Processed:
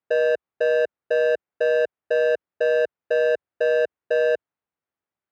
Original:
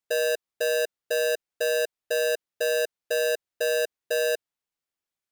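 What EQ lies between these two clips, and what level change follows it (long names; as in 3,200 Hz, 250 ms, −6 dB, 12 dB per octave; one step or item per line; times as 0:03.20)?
high-pass filter 55 Hz 24 dB per octave
low-pass filter 1,700 Hz 12 dB per octave
+5.5 dB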